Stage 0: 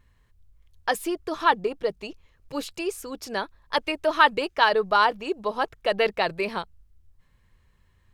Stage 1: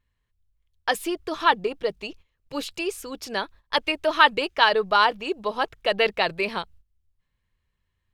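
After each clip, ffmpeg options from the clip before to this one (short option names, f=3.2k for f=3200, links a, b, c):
-af "agate=range=-14dB:threshold=-47dB:ratio=16:detection=peak,equalizer=f=3.1k:t=o:w=1.3:g=5"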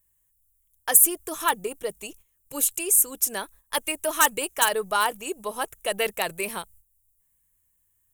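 -af "volume=7dB,asoftclip=hard,volume=-7dB,aexciter=amount=11.9:drive=9.7:freq=7.1k,volume=-4.5dB"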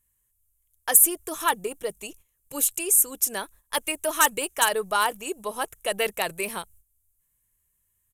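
-af "aresample=32000,aresample=44100"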